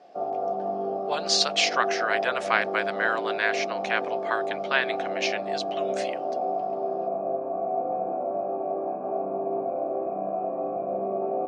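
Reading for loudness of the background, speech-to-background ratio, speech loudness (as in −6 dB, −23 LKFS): −29.5 LKFS, 2.5 dB, −27.0 LKFS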